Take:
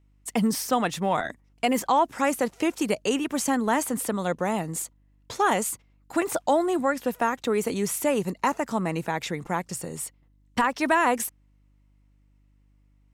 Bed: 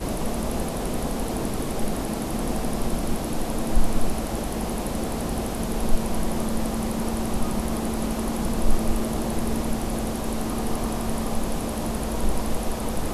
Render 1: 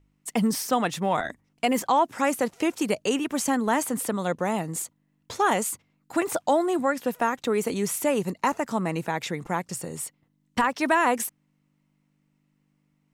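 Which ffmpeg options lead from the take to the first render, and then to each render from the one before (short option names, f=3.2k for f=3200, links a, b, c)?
-af "bandreject=f=50:t=h:w=4,bandreject=f=100:t=h:w=4"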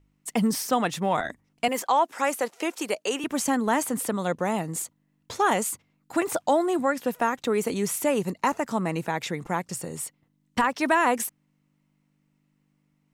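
-filter_complex "[0:a]asettb=1/sr,asplit=3[a][b][c];[a]atrim=end=1.684[d];[b]atrim=start=1.68:end=3.24,asetpts=PTS-STARTPTS,afade=t=in:d=0.004:c=qsin,afade=t=out:st=1.556:d=0.004:c=qsin,highpass=400[e];[c]atrim=start=3.236[f];[d][e]acrossfade=d=0.004:c1=hsin:c2=qsin[g];[g][f]acrossfade=d=0.004:c1=qsin:c2=hsin"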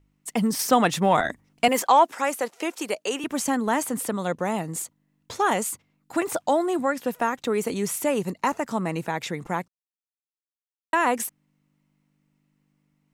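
-filter_complex "[0:a]asettb=1/sr,asplit=3[a][b][c];[a]atrim=end=0.594[d];[b]atrim=start=0.59:end=2.15,asetpts=PTS-STARTPTS,afade=t=in:d=0.004:c=qsin,afade=t=out:st=1.556:d=0.004:c=qsin,acontrast=31[e];[c]atrim=start=2.146[f];[d][e]acrossfade=d=0.004:c1=hsin:c2=qsin[g];[g][f]acrossfade=d=0.004:c1=qsin:c2=hsin,asplit=3[h][i][j];[h]atrim=end=9.68,asetpts=PTS-STARTPTS,afade=t=out:st=9.676:d=0.004:c=hsin[k];[i]atrim=start=9.68:end=10.93,asetpts=PTS-STARTPTS,volume=0[l];[j]atrim=start=10.93,asetpts=PTS-STARTPTS,afade=t=in:d=0.004:c=hsin[m];[k][l][m]concat=n=3:v=0:a=1"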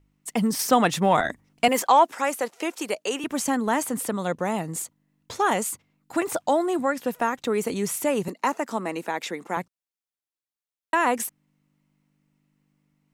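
-filter_complex "[0:a]asettb=1/sr,asplit=3[a][b][c];[a]atrim=end=8.284[d];[b]atrim=start=8.28:end=9.57,asetpts=PTS-STARTPTS,afade=t=in:d=0.004:c=qsin,afade=t=out:st=1.286:d=0.004:c=qsin,highpass=f=230:w=0.5412,highpass=f=230:w=1.3066[e];[c]atrim=start=9.566[f];[d][e]acrossfade=d=0.004:c1=hsin:c2=qsin[g];[g][f]acrossfade=d=0.004:c1=qsin:c2=hsin"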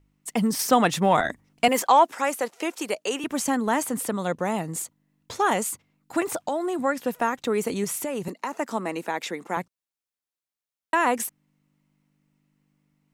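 -filter_complex "[0:a]asettb=1/sr,asplit=3[a][b][c];[a]atrim=end=6.234[d];[b]atrim=start=6.23:end=6.84,asetpts=PTS-STARTPTS,afade=t=in:d=0.004:c=qsin,afade=t=out:st=0.606:d=0.004:c=qsin,acompressor=threshold=-23dB:ratio=6:attack=3.2:release=140:knee=1:detection=peak[e];[c]atrim=start=6.836[f];[d][e]acrossfade=d=0.004:c1=hsin:c2=qsin[g];[g][f]acrossfade=d=0.004:c1=qsin:c2=hsin,asettb=1/sr,asplit=3[h][i][j];[h]atrim=end=7.844[k];[i]atrim=start=7.84:end=8.6,asetpts=PTS-STARTPTS,afade=t=in:d=0.004:c=qsin,afade=t=out:st=0.756:d=0.004:c=qsin,acompressor=threshold=-25dB:ratio=6:attack=3.2:release=140:knee=1:detection=peak[l];[j]atrim=start=8.596[m];[k][l]acrossfade=d=0.004:c1=hsin:c2=qsin[n];[n][m]acrossfade=d=0.004:c1=qsin:c2=hsin"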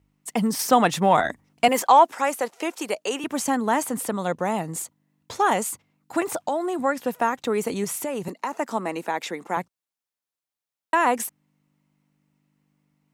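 -af "highpass=48,equalizer=f=830:w=1.5:g=3"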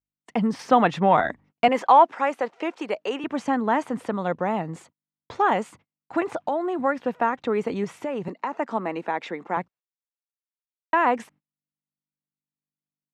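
-af "lowpass=2.7k,agate=range=-29dB:threshold=-50dB:ratio=16:detection=peak"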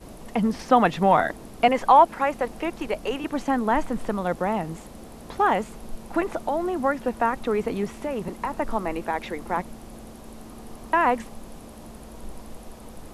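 -filter_complex "[1:a]volume=-15dB[a];[0:a][a]amix=inputs=2:normalize=0"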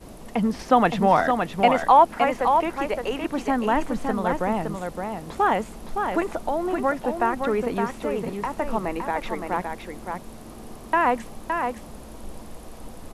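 -af "aecho=1:1:565:0.531"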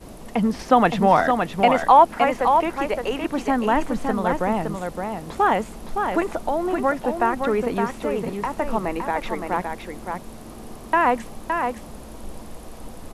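-af "volume=2dB,alimiter=limit=-3dB:level=0:latency=1"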